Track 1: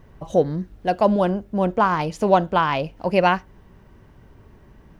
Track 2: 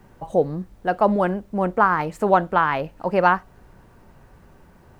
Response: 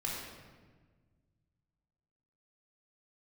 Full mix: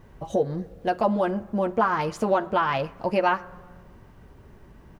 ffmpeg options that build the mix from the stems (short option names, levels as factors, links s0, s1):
-filter_complex "[0:a]acompressor=threshold=0.1:ratio=6,volume=0.841[s0];[1:a]adelay=9,volume=0.376,asplit=2[s1][s2];[s2]volume=0.158[s3];[2:a]atrim=start_sample=2205[s4];[s3][s4]afir=irnorm=-1:irlink=0[s5];[s0][s1][s5]amix=inputs=3:normalize=0"